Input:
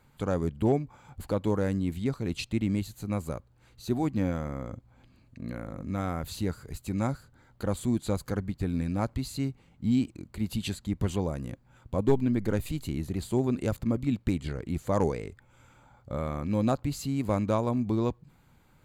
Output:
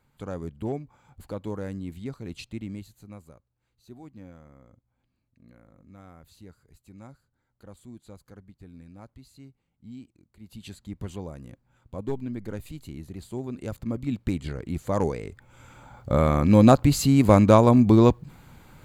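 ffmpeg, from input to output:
-af "volume=14.1,afade=t=out:st=2.41:d=0.94:silence=0.266073,afade=t=in:st=10.41:d=0.4:silence=0.298538,afade=t=in:st=13.52:d=0.85:silence=0.398107,afade=t=in:st=15.21:d=0.93:silence=0.298538"

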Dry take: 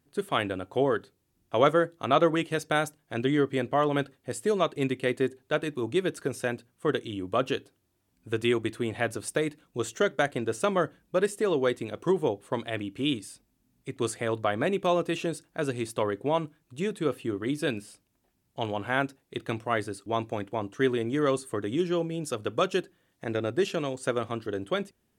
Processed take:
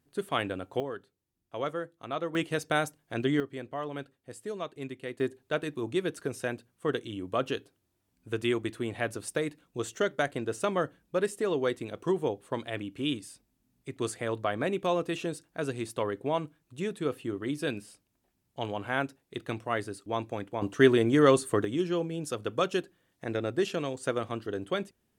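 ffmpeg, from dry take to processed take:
-af "asetnsamples=n=441:p=0,asendcmd='0.8 volume volume -11.5dB;2.35 volume volume -1.5dB;3.4 volume volume -11dB;5.2 volume volume -3dB;20.62 volume volume 5dB;21.65 volume volume -2dB',volume=0.75"

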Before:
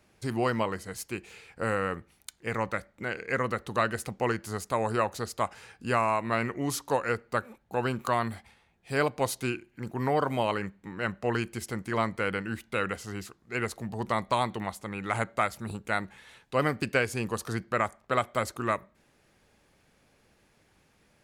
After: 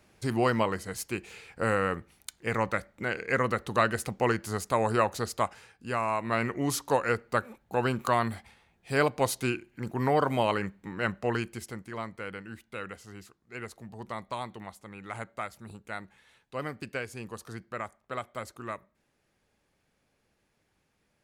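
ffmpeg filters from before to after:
-af "volume=3.76,afade=t=out:st=5.36:d=0.38:silence=0.316228,afade=t=in:st=5.74:d=0.83:silence=0.334965,afade=t=out:st=11.05:d=0.87:silence=0.298538"

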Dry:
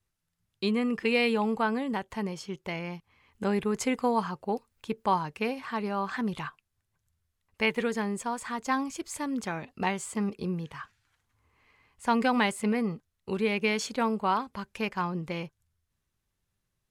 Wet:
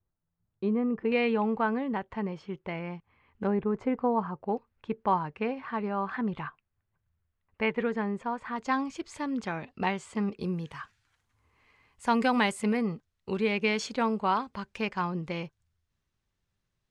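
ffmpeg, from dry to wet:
-af "asetnsamples=n=441:p=0,asendcmd='1.12 lowpass f 2200;3.47 lowpass f 1200;4.44 lowpass f 2100;8.56 lowpass f 4400;10.4 lowpass f 10000;12.77 lowpass f 6300',lowpass=1000"

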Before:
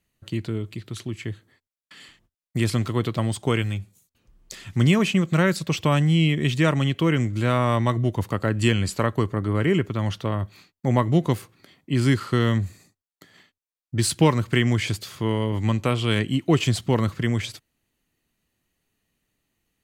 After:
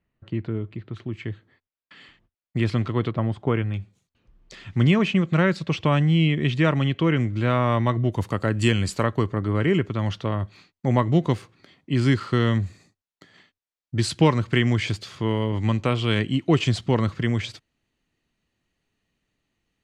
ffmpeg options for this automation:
-af "asetnsamples=n=441:p=0,asendcmd='1.13 lowpass f 3200;3.11 lowpass f 1700;3.74 lowpass f 3700;8.12 lowpass f 9600;9.04 lowpass f 5700',lowpass=1900"

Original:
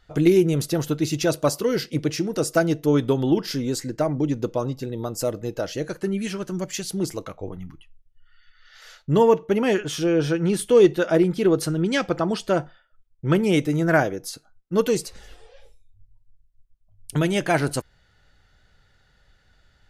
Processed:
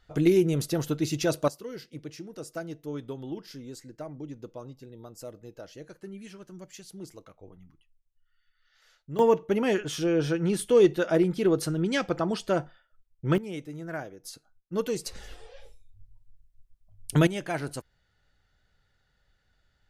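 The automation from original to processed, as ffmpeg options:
-af "asetnsamples=n=441:p=0,asendcmd='1.48 volume volume -16.5dB;9.19 volume volume -4.5dB;13.38 volume volume -17dB;14.25 volume volume -8.5dB;15.06 volume volume 1dB;17.27 volume volume -10.5dB',volume=0.596"

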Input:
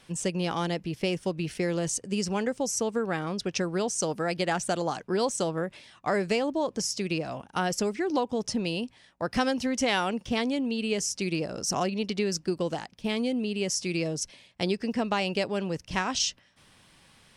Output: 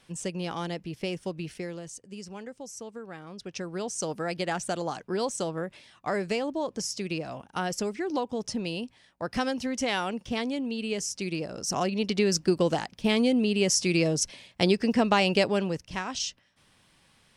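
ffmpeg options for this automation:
-af "volume=4.73,afade=t=out:st=1.39:d=0.46:silence=0.375837,afade=t=in:st=3.26:d=0.86:silence=0.316228,afade=t=in:st=11.61:d=0.82:silence=0.421697,afade=t=out:st=15.47:d=0.44:silence=0.334965"

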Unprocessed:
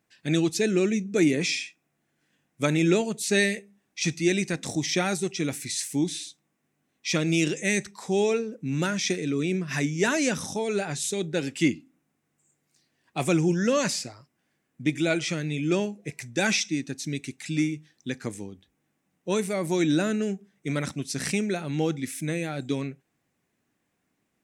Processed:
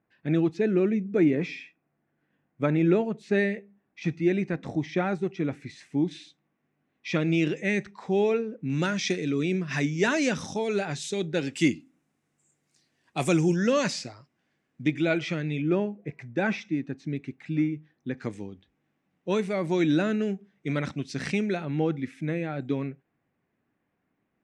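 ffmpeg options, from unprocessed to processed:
-af "asetnsamples=n=441:p=0,asendcmd='6.11 lowpass f 2500;8.7 lowpass f 5000;11.53 lowpass f 10000;13.56 lowpass f 5200;14.88 lowpass f 3000;15.62 lowpass f 1600;18.18 lowpass f 3600;21.65 lowpass f 2100',lowpass=1600"

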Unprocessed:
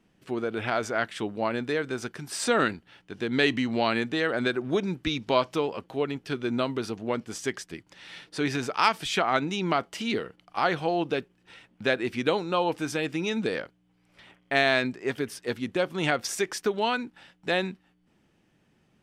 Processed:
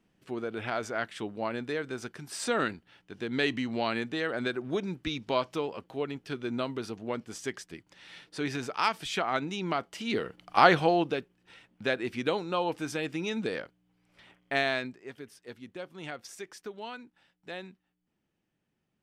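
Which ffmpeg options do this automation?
-af "volume=2.11,afade=t=in:st=10.05:d=0.53:silence=0.266073,afade=t=out:st=10.58:d=0.59:silence=0.298538,afade=t=out:st=14.52:d=0.53:silence=0.298538"

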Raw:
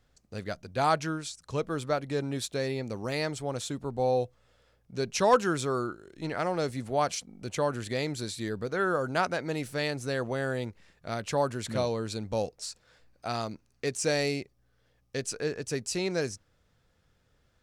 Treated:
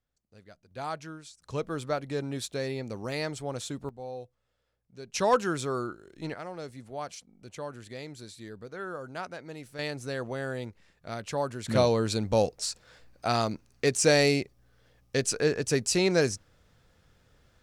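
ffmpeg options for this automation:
-af "asetnsamples=n=441:p=0,asendcmd='0.71 volume volume -10dB;1.42 volume volume -1.5dB;3.89 volume volume -13dB;5.14 volume volume -1.5dB;6.34 volume volume -10dB;9.79 volume volume -3dB;11.68 volume volume 6dB',volume=0.141"

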